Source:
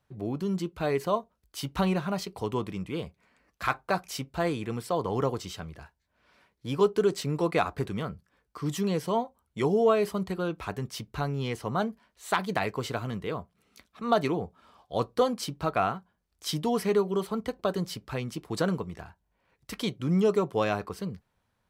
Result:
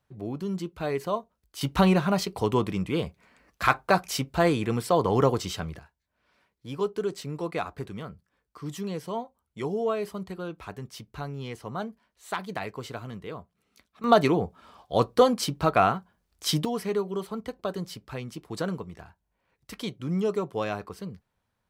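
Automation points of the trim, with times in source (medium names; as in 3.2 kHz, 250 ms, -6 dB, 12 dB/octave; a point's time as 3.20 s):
-1.5 dB
from 1.61 s +6 dB
from 5.79 s -5 dB
from 14.04 s +5.5 dB
from 16.65 s -3 dB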